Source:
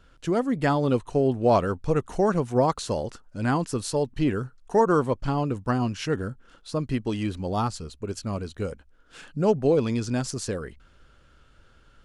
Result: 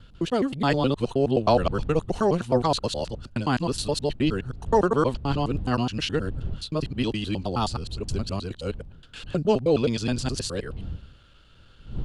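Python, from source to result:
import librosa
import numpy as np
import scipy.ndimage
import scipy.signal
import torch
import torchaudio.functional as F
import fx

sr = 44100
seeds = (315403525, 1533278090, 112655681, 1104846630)

y = fx.local_reverse(x, sr, ms=105.0)
y = fx.dmg_wind(y, sr, seeds[0], corner_hz=86.0, level_db=-37.0)
y = fx.band_shelf(y, sr, hz=3500.0, db=8.5, octaves=1.0)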